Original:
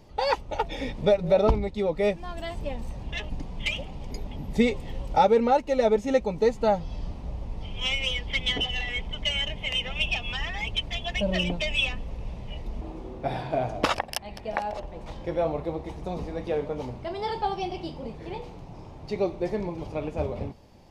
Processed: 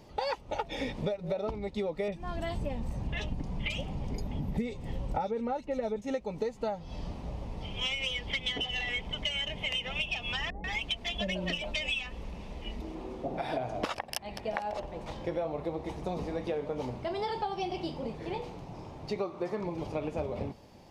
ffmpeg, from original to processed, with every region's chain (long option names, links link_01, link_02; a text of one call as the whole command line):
ffmpeg -i in.wav -filter_complex "[0:a]asettb=1/sr,asplit=3[link_01][link_02][link_03];[link_01]atrim=end=2.084[link_04];[link_02]atrim=start=2.08:end=6.02,asetpts=PTS-STARTPTS,afade=type=in:duration=0.004:curve=qsin,afade=type=out:start_time=3.936:duration=0.004:curve=qsin,bass=frequency=250:gain=7,treble=frequency=4000:gain=-2,acrossover=split=3200[link_05][link_06];[link_06]adelay=40[link_07];[link_05][link_07]amix=inputs=2:normalize=0,atrim=end_sample=173754[link_08];[link_03]atrim=start=6.016[link_09];[link_04][link_08]acrossfade=duration=0.004:curve1=hsin:curve2=qsin[link_10];[link_10][link_09]acrossfade=duration=0.004:curve1=qsin:curve2=hsin,asettb=1/sr,asplit=3[link_11][link_12][link_13];[link_11]atrim=end=10.504[link_14];[link_12]atrim=start=10.5:end=13.57,asetpts=PTS-STARTPTS,afade=type=in:duration=0.004:curve=qsin,afade=type=out:start_time=3.066:duration=0.004:curve=qsin,equalizer=frequency=120:width_type=o:width=0.38:gain=-14.5,acrossover=split=630[link_15][link_16];[link_16]adelay=140[link_17];[link_15][link_17]amix=inputs=2:normalize=0,atrim=end_sample=135387[link_18];[link_13]atrim=start=13.566[link_19];[link_14][link_18]acrossfade=duration=0.004:curve1=hsin:curve2=qsin[link_20];[link_20][link_19]acrossfade=duration=0.004:curve1=qsin:curve2=hsin,asettb=1/sr,asplit=3[link_21][link_22][link_23];[link_21]atrim=end=19.194[link_24];[link_22]atrim=start=19.19:end=19.64,asetpts=PTS-STARTPTS,afade=type=in:duration=0.004:curve=qsin,afade=type=out:start_time=0.446:duration=0.004:curve=qsin,highpass=110,equalizer=frequency=1200:width_type=o:width=0.49:gain=13[link_25];[link_23]atrim=start=19.636[link_26];[link_24][link_25]acrossfade=duration=0.004:curve1=hsin:curve2=qsin[link_27];[link_27][link_26]acrossfade=duration=0.004:curve1=qsin:curve2=hsin,lowshelf=frequency=71:gain=-10,acompressor=threshold=-30dB:ratio=16,volume=1dB" out.wav